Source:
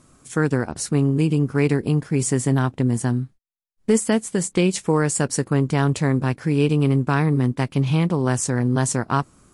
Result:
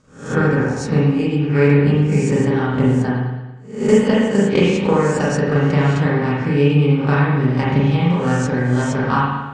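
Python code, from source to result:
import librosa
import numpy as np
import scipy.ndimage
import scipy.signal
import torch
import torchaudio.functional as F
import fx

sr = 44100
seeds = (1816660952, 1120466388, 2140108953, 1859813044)

y = fx.spec_swells(x, sr, rise_s=0.5)
y = scipy.signal.sosfilt(scipy.signal.butter(4, 6800.0, 'lowpass', fs=sr, output='sos'), y)
y = fx.transient(y, sr, attack_db=9, sustain_db=-4)
y = fx.notch_comb(y, sr, f0_hz=340.0)
y = fx.rev_spring(y, sr, rt60_s=1.1, pass_ms=(35, 40), chirp_ms=75, drr_db=-5.5)
y = y * librosa.db_to_amplitude(-4.0)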